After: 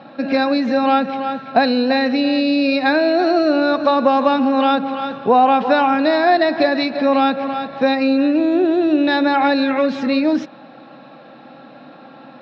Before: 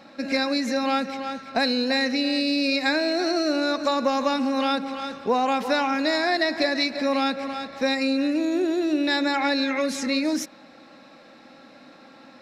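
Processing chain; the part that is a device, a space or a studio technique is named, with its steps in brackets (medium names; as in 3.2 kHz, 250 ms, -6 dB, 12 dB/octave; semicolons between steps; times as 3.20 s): guitar cabinet (cabinet simulation 110–3400 Hz, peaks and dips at 140 Hz +10 dB, 740 Hz +5 dB, 2.1 kHz -9 dB); trim +7.5 dB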